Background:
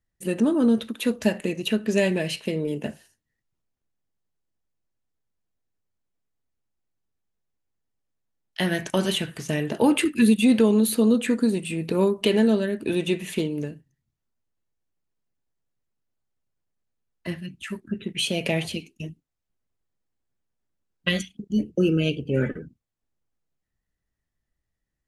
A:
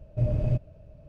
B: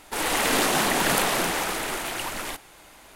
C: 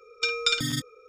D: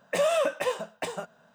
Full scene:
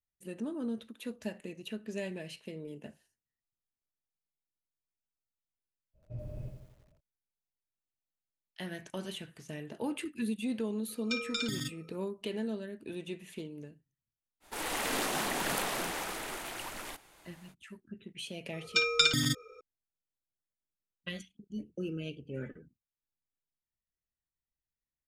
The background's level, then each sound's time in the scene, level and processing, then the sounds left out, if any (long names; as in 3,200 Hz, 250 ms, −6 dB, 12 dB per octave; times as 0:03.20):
background −16.5 dB
0:05.93: mix in A −17 dB, fades 0.05 s + feedback echo at a low word length 86 ms, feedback 55%, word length 8 bits, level −6 dB
0:10.88: mix in C −8.5 dB + brickwall limiter −13 dBFS
0:14.40: mix in B −10.5 dB, fades 0.05 s
0:18.53: mix in C −0.5 dB
not used: D